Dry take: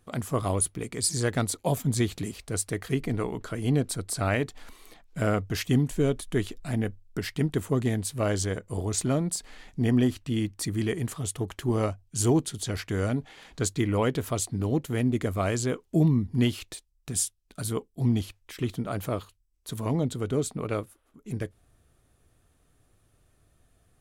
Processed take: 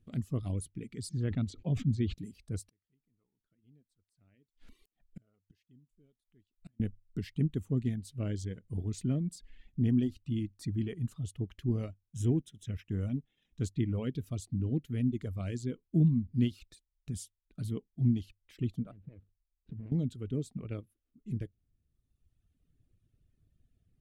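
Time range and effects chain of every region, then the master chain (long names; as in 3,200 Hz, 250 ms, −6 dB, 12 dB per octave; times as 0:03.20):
0:01.09–0:02.14: high-frequency loss of the air 130 metres + level that may fall only so fast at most 93 dB per second
0:02.69–0:06.80: low-shelf EQ 180 Hz −5.5 dB + gate with flip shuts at −30 dBFS, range −32 dB
0:11.91–0:13.64: mu-law and A-law mismatch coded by A + Butterworth band-reject 4,500 Hz, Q 4.3
0:18.91–0:19.92: running median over 41 samples + low-pass filter 3,300 Hz + downward compressor 20 to 1, threshold −35 dBFS
whole clip: reverb reduction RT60 1.5 s; drawn EQ curve 220 Hz 0 dB, 930 Hz −22 dB, 2,800 Hz −10 dB, 10,000 Hz −19 dB; level −1.5 dB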